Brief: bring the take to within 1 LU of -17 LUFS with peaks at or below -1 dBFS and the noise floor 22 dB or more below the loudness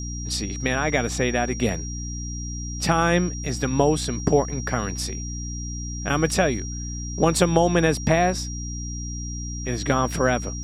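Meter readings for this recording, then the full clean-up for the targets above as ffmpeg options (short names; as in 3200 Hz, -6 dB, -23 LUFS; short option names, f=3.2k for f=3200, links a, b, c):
hum 60 Hz; harmonics up to 300 Hz; hum level -29 dBFS; steady tone 5700 Hz; tone level -35 dBFS; loudness -24.0 LUFS; peak -4.0 dBFS; loudness target -17.0 LUFS
-> -af "bandreject=f=60:t=h:w=6,bandreject=f=120:t=h:w=6,bandreject=f=180:t=h:w=6,bandreject=f=240:t=h:w=6,bandreject=f=300:t=h:w=6"
-af "bandreject=f=5.7k:w=30"
-af "volume=7dB,alimiter=limit=-1dB:level=0:latency=1"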